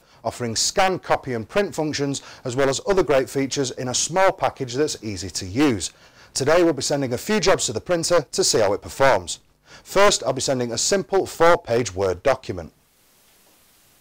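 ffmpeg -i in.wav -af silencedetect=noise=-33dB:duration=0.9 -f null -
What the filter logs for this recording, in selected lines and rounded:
silence_start: 12.66
silence_end: 14.01 | silence_duration: 1.34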